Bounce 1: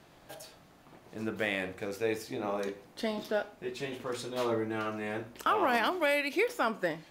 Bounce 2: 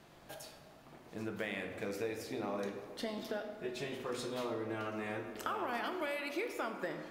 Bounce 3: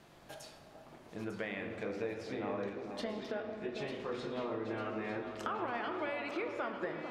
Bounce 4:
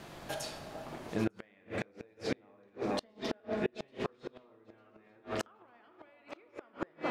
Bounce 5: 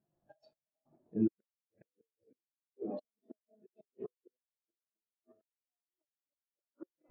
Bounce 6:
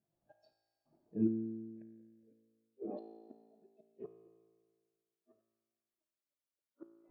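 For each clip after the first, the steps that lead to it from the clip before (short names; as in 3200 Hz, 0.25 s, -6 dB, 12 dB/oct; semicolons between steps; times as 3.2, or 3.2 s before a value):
compressor 5:1, threshold -34 dBFS, peak gain reduction 10 dB; on a send at -6 dB: reverb RT60 2.3 s, pre-delay 3 ms; on the sum: gain -2 dB
treble ducked by the level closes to 3000 Hz, closed at -35.5 dBFS; on a send: echo with dull and thin repeats by turns 0.449 s, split 1200 Hz, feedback 68%, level -7 dB
flipped gate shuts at -30 dBFS, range -34 dB; gain +10.5 dB
step gate "xxx.x...x" 141 bpm -12 dB; spectral expander 2.5:1
resonator 56 Hz, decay 1.7 s, harmonics all, mix 80%; gain +8 dB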